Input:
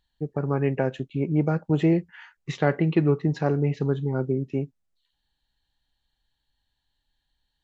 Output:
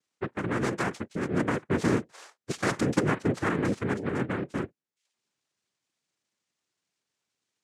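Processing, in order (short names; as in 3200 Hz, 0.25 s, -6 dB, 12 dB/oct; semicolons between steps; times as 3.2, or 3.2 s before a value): one-sided fold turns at -18 dBFS; dynamic EQ 2100 Hz, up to +5 dB, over -52 dBFS, Q 5.9; noise vocoder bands 3; gain -3.5 dB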